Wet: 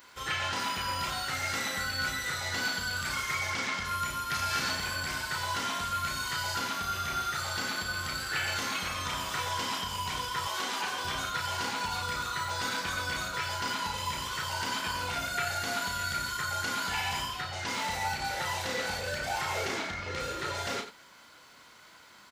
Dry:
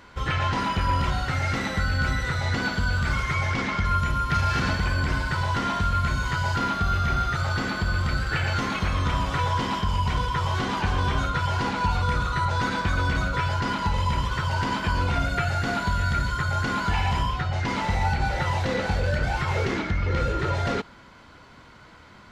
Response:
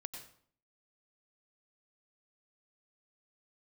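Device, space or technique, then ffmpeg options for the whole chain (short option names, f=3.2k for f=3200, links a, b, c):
slapback doubling: -filter_complex "[0:a]aemphasis=mode=production:type=riaa,asplit=3[a][b][c];[b]adelay=34,volume=-6dB[d];[c]adelay=90,volume=-11.5dB[e];[a][d][e]amix=inputs=3:normalize=0,asettb=1/sr,asplit=3[f][g][h];[f]atrim=end=10.474[i];[g]atrim=start=10.47:end=11.05,asetpts=PTS-STARTPTS,afade=t=in:d=0.004:c=qsin,afade=t=out:st=0.576:d=0.004:c=qsin,highpass=250[j];[h]atrim=start=11.046[k];[i][j]acrossfade=d=0.004:c1=hsin:c2=qsin[l];[l][k]acrossfade=d=0.004:c1=qsin:c2=hsin,asettb=1/sr,asplit=3[m][n][o];[m]atrim=end=19.264[p];[n]atrim=start=19.26:end=20.11,asetpts=PTS-STARTPTS,afade=t=in:d=0.004:c=qsin,afade=t=out:st=0.846:d=0.004:c=qsin,equalizer=f=690:w=2.3:g=5.5[q];[o]atrim=start=20.106[r];[p][q]acrossfade=d=0.004:c1=hsin:c2=qsin[s];[s][r]acrossfade=d=0.004:c1=qsin:c2=hsin,volume=-7dB"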